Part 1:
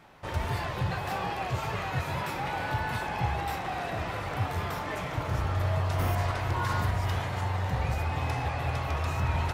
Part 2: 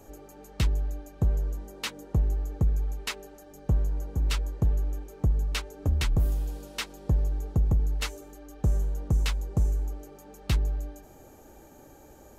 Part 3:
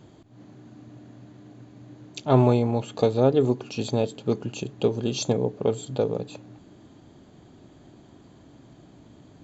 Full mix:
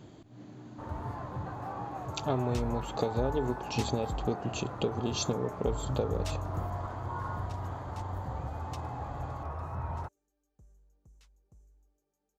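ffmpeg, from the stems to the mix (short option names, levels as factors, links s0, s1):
-filter_complex "[0:a]highshelf=f=1700:t=q:w=1.5:g=-14,adelay=550,volume=0.376[s0];[1:a]equalizer=f=6300:w=1.3:g=7.5,adelay=1950,volume=0.237,asplit=3[s1][s2][s3];[s1]atrim=end=4.27,asetpts=PTS-STARTPTS,afade=t=out:st=4.266:d=0.004:c=hsin[s4];[s2]atrim=start=4.27:end=5.09,asetpts=PTS-STARTPTS,volume=0[s5];[s3]atrim=start=5.09,asetpts=PTS-STARTPTS,afade=t=in:d=0.004:c=hsin[s6];[s4][s5][s6]concat=n=3:v=0:a=1[s7];[2:a]acompressor=threshold=0.0447:ratio=6,volume=0.944,asplit=2[s8][s9];[s9]apad=whole_len=632309[s10];[s7][s10]sidechaingate=range=0.0708:threshold=0.00398:ratio=16:detection=peak[s11];[s0][s11][s8]amix=inputs=3:normalize=0"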